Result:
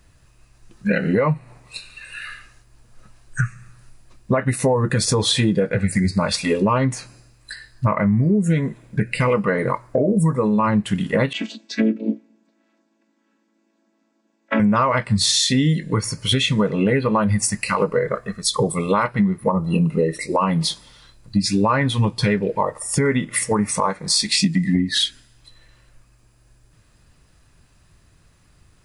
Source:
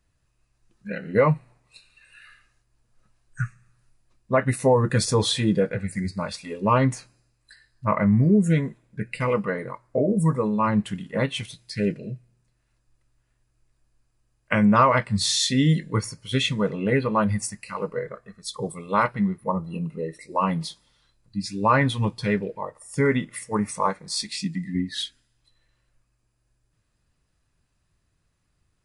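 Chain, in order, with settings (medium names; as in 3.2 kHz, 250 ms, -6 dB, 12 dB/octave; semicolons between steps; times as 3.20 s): 11.33–14.60 s: vocoder on a held chord major triad, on A3; compression 12:1, threshold -30 dBFS, peak gain reduction 17.5 dB; loudness maximiser +23 dB; trim -7 dB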